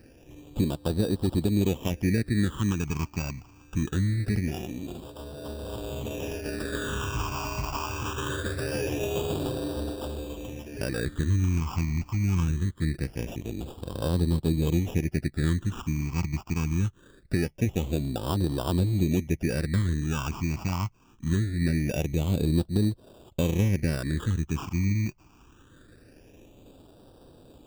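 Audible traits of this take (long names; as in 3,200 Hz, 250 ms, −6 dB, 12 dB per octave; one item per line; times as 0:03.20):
aliases and images of a low sample rate 2,100 Hz, jitter 0%
phaser sweep stages 8, 0.23 Hz, lowest notch 490–2,100 Hz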